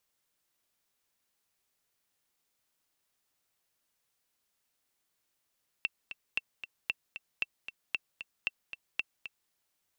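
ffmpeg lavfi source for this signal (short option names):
-f lavfi -i "aevalsrc='pow(10,(-16.5-11*gte(mod(t,2*60/229),60/229))/20)*sin(2*PI*2690*mod(t,60/229))*exp(-6.91*mod(t,60/229)/0.03)':d=3.66:s=44100"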